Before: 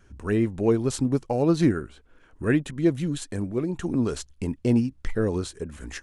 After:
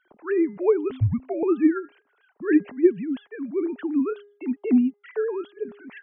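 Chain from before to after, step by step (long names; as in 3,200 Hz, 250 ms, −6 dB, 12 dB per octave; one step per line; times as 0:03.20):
three sine waves on the formant tracks
hum removal 409.1 Hz, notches 5
0:00.91–0:01.43: frequency shifter −150 Hz
level +1 dB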